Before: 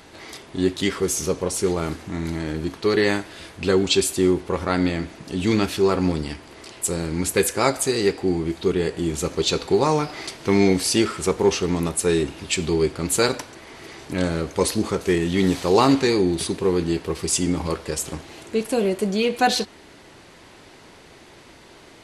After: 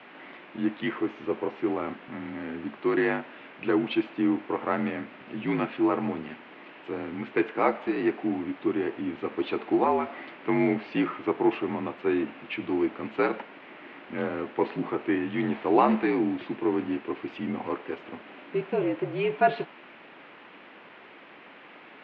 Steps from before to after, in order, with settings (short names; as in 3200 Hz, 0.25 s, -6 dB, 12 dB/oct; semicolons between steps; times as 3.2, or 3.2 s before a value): requantised 6-bit, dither triangular; mistuned SSB -55 Hz 260–2800 Hz; dynamic EQ 790 Hz, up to +4 dB, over -33 dBFS, Q 1.2; gain -5.5 dB